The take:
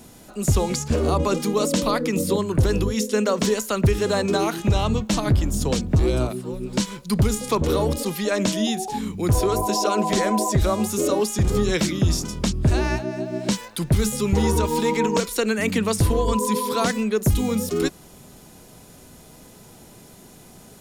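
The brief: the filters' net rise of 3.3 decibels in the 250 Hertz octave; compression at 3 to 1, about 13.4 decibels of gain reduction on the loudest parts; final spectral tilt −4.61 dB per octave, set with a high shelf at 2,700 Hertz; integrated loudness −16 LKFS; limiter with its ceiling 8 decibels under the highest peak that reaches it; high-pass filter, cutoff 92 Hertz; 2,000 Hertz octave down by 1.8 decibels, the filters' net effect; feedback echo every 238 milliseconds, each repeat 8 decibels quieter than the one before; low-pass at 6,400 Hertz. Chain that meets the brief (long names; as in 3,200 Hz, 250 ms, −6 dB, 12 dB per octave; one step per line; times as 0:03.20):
high-pass filter 92 Hz
low-pass filter 6,400 Hz
parametric band 250 Hz +4.5 dB
parametric band 2,000 Hz −6.5 dB
high-shelf EQ 2,700 Hz +9 dB
downward compressor 3 to 1, threshold −33 dBFS
brickwall limiter −24.5 dBFS
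repeating echo 238 ms, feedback 40%, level −8 dB
level +18 dB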